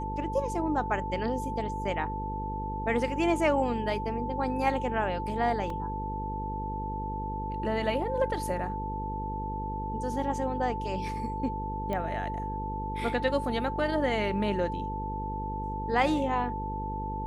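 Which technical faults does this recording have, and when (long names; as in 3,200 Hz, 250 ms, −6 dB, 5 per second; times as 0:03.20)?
mains buzz 50 Hz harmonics 10 −36 dBFS
whistle 880 Hz −34 dBFS
0:05.70: drop-out 2.5 ms
0:11.93: click −21 dBFS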